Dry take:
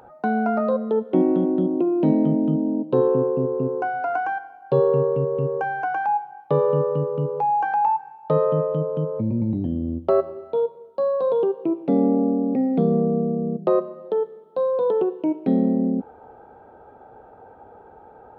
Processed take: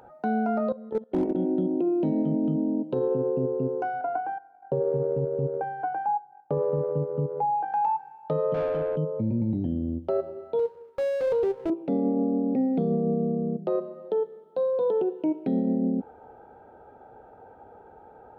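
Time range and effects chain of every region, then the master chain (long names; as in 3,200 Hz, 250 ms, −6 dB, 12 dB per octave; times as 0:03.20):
0:00.72–0:01.35: output level in coarse steps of 19 dB + gain into a clipping stage and back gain 16 dB
0:04.01–0:07.74: low-pass filter 1,200 Hz + transient designer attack +4 dB, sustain −8 dB
0:08.54–0:08.96: low-shelf EQ 460 Hz −8 dB + mid-hump overdrive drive 20 dB, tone 1,400 Hz, clips at −15 dBFS
0:10.59–0:11.70: lower of the sound and its delayed copy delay 2.2 ms + high-pass filter 110 Hz 6 dB per octave
whole clip: notch filter 1,100 Hz, Q 6.6; dynamic equaliser 1,700 Hz, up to −4 dB, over −37 dBFS, Q 0.95; brickwall limiter −14.5 dBFS; level −3 dB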